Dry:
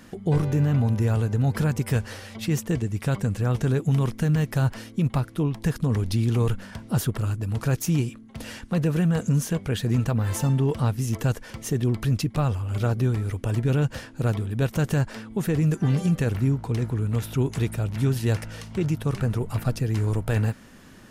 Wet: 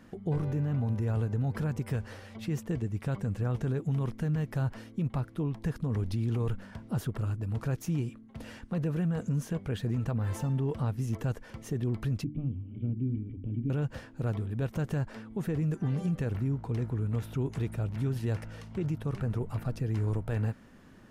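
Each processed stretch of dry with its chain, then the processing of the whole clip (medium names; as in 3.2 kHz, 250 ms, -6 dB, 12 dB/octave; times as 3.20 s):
12.24–13.70 s: cascade formant filter i + bass shelf 330 Hz +10 dB + hum notches 50/100/150/200/250/300/350 Hz
whole clip: treble shelf 2.7 kHz -10 dB; peak limiter -18 dBFS; trim -5.5 dB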